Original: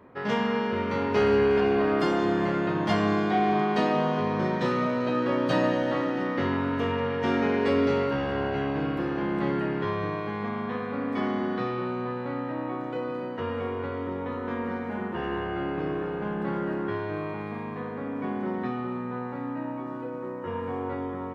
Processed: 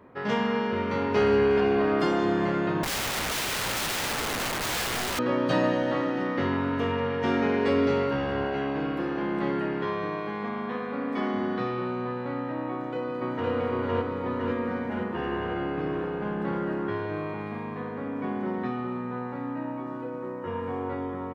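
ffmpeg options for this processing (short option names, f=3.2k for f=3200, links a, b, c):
-filter_complex "[0:a]asettb=1/sr,asplit=3[a][b][c];[a]atrim=end=2.834[d];[b]atrim=start=2.83:end=5.19,asetpts=PTS-STARTPTS,afade=t=in:d=0.004:c=qsin,afade=t=out:st=2.356:d=0.004:c=qsin,aeval=exprs='(mod(16.8*val(0)+1,2)-1)/16.8':c=same[e];[c]atrim=start=5.186[f];[d][e]acrossfade=d=0.004:c1=hsin:c2=qsin[g];[g][f]acrossfade=d=0.004:c1=qsin:c2=hsin,asettb=1/sr,asplit=3[h][i][j];[h]atrim=end=8.444[k];[i]atrim=start=8.44:end=11.34,asetpts=PTS-STARTPTS,afade=t=in:d=0.004:c=qsin,afade=t=out:st=2.896:d=0.004:c=qsin,equalizer=f=100:t=o:w=0.77:g=-12[l];[j]atrim=start=11.336[m];[k][l]acrossfade=d=0.004:c1=hsin:c2=qsin[n];[n][m]acrossfade=d=0.004:c1=qsin:c2=hsin,asplit=2[o][p];[p]afade=t=in:st=12.7:d=0.01,afade=t=out:st=13.5:d=0.01,aecho=0:1:510|1020|1530|2040|2550|3060|3570|4080|4590|5100|5610|6120:1|0.7|0.49|0.343|0.2401|0.16807|0.117649|0.0823543|0.057648|0.0403536|0.0282475|0.0197733[q];[o][q]amix=inputs=2:normalize=0"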